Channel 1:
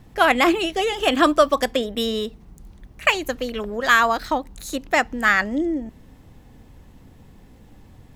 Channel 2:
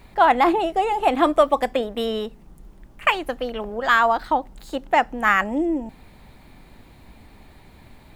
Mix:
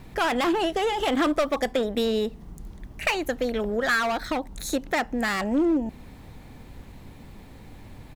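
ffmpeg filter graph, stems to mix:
ffmpeg -i stem1.wav -i stem2.wav -filter_complex "[0:a]acompressor=threshold=-30dB:ratio=3,volume=1.5dB[link_01];[1:a]asoftclip=type=hard:threshold=-20.5dB,adelay=0.8,volume=-2.5dB[link_02];[link_01][link_02]amix=inputs=2:normalize=0" out.wav

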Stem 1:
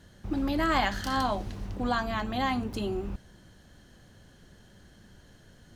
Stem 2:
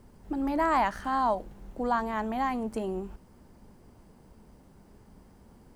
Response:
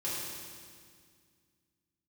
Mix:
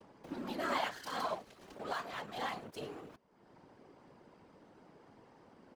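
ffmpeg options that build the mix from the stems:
-filter_complex "[0:a]aeval=exprs='sgn(val(0))*max(abs(val(0))-0.0119,0)':channel_layout=same,volume=-1.5dB[link_01];[1:a]lowpass=4000,adelay=13,volume=-11dB[link_02];[link_01][link_02]amix=inputs=2:normalize=0,highpass=310,acompressor=mode=upward:threshold=-38dB:ratio=2.5,afftfilt=real='hypot(re,im)*cos(2*PI*random(0))':imag='hypot(re,im)*sin(2*PI*random(1))':win_size=512:overlap=0.75"

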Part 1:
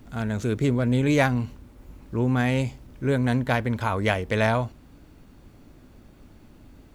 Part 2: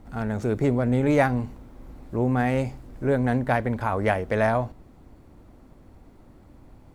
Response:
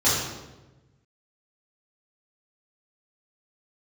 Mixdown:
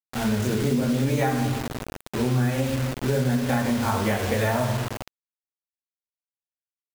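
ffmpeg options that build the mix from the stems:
-filter_complex "[0:a]flanger=delay=3:depth=2.6:regen=38:speed=1.1:shape=triangular,volume=1.5dB,asplit=2[link_01][link_02];[link_02]volume=-14.5dB[link_03];[1:a]adelay=24,volume=-2dB,asplit=2[link_04][link_05];[link_05]apad=whole_len=306127[link_06];[link_01][link_06]sidechaincompress=threshold=-31dB:ratio=4:attack=9.7:release=103[link_07];[2:a]atrim=start_sample=2205[link_08];[link_03][link_08]afir=irnorm=-1:irlink=0[link_09];[link_07][link_04][link_09]amix=inputs=3:normalize=0,acrusher=bits=4:mix=0:aa=0.000001,acompressor=threshold=-20dB:ratio=4"

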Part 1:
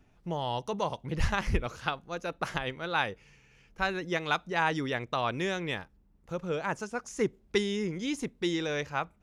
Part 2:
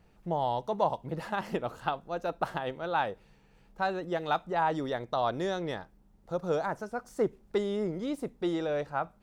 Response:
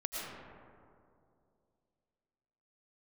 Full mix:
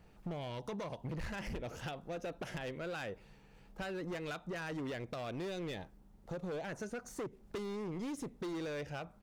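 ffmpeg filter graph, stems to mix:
-filter_complex "[0:a]acompressor=threshold=-36dB:ratio=1.5,volume=-3dB[link_01];[1:a]acompressor=threshold=-32dB:ratio=6,asoftclip=type=tanh:threshold=-35dB,adelay=0.4,volume=1dB,asplit=2[link_02][link_03];[link_03]apad=whole_len=406899[link_04];[link_01][link_04]sidechaingate=range=-33dB:threshold=-48dB:ratio=16:detection=peak[link_05];[link_05][link_02]amix=inputs=2:normalize=0,volume=32dB,asoftclip=hard,volume=-32dB,acompressor=threshold=-39dB:ratio=4"

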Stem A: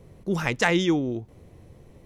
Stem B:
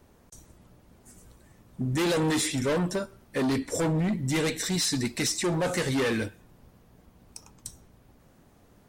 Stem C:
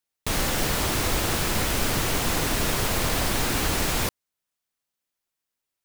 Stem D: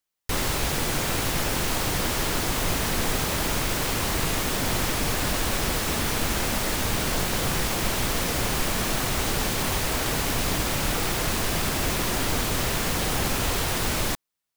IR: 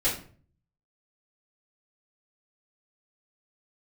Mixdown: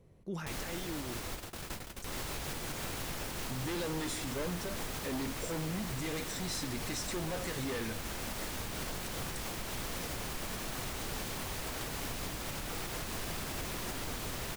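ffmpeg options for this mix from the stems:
-filter_complex "[0:a]alimiter=limit=-18dB:level=0:latency=1:release=22,volume=-12dB,asplit=2[link_01][link_02];[1:a]adelay=1700,volume=-2.5dB[link_03];[2:a]adelay=200,volume=-12dB[link_04];[3:a]adelay=1750,volume=-7dB[link_05];[link_02]apad=whole_len=266429[link_06];[link_04][link_06]sidechaingate=range=-33dB:threshold=-59dB:ratio=16:detection=peak[link_07];[link_01][link_03][link_07][link_05]amix=inputs=4:normalize=0,asoftclip=type=hard:threshold=-19dB,alimiter=level_in=4.5dB:limit=-24dB:level=0:latency=1:release=319,volume=-4.5dB"

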